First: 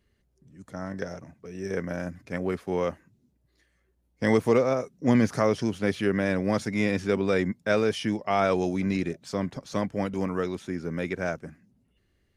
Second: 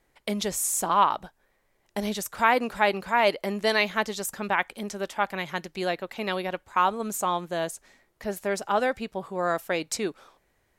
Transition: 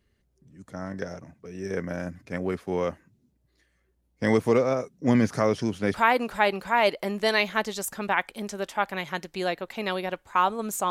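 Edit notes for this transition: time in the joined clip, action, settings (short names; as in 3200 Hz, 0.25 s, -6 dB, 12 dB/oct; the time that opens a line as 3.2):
first
5.94 switch to second from 2.35 s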